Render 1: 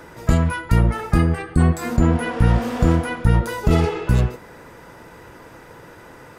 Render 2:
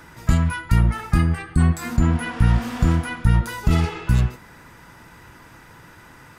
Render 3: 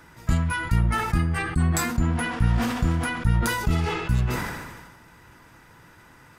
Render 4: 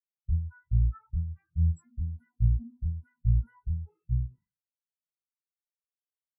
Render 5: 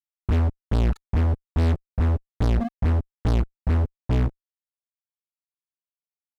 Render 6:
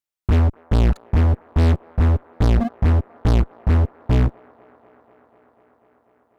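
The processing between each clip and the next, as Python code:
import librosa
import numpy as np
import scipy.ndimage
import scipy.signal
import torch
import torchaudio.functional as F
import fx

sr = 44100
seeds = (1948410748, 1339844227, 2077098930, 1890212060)

y1 = fx.peak_eq(x, sr, hz=490.0, db=-12.0, octaves=1.2)
y2 = fx.sustainer(y1, sr, db_per_s=39.0)
y2 = y2 * 10.0 ** (-5.5 / 20.0)
y3 = fx.spectral_expand(y2, sr, expansion=4.0)
y3 = y3 * 10.0 ** (-6.5 / 20.0)
y4 = fx.notch_comb(y3, sr, f0_hz=310.0)
y4 = fx.fuzz(y4, sr, gain_db=43.0, gate_db=-44.0)
y4 = y4 * 10.0 ** (-4.5 / 20.0)
y5 = fx.echo_wet_bandpass(y4, sr, ms=246, feedback_pct=82, hz=860.0, wet_db=-21)
y5 = y5 * 10.0 ** (5.0 / 20.0)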